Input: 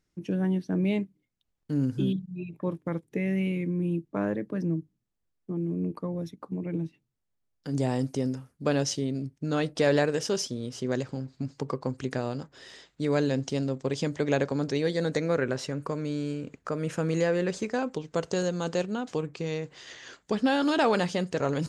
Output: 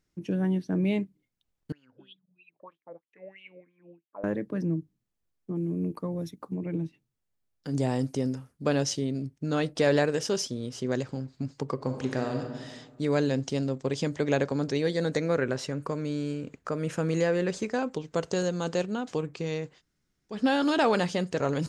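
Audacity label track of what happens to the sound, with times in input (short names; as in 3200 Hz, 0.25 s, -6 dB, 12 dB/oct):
1.720000	4.240000	wah 3.1 Hz 530–3300 Hz, Q 9
5.550000	6.550000	high shelf 7500 Hz +9.5 dB
11.740000	12.540000	reverb throw, RT60 1.5 s, DRR 3.5 dB
19.740000	20.360000	room tone, crossfade 0.16 s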